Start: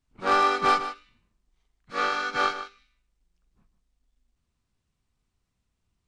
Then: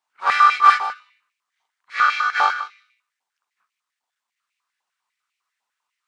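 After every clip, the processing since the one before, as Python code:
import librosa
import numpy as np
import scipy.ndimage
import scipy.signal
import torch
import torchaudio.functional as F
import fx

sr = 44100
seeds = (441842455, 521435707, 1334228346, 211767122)

y = fx.filter_held_highpass(x, sr, hz=10.0, low_hz=860.0, high_hz=2300.0)
y = F.gain(torch.from_numpy(y), 1.5).numpy()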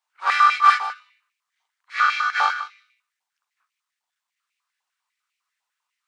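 y = fx.highpass(x, sr, hz=940.0, slope=6)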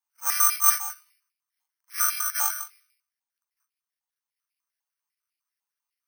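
y = (np.kron(scipy.signal.resample_poly(x, 1, 6), np.eye(6)[0]) * 6)[:len(x)]
y = F.gain(torch.from_numpy(y), -13.0).numpy()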